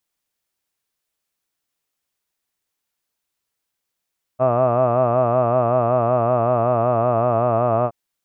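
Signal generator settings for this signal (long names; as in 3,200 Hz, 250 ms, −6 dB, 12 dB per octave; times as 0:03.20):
vowel from formants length 3.52 s, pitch 124 Hz, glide −1 semitone, F1 650 Hz, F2 1,200 Hz, F3 2,600 Hz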